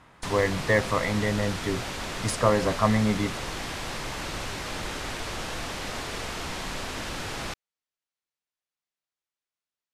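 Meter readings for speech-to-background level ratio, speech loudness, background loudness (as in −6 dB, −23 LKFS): 7.5 dB, −26.0 LKFS, −33.5 LKFS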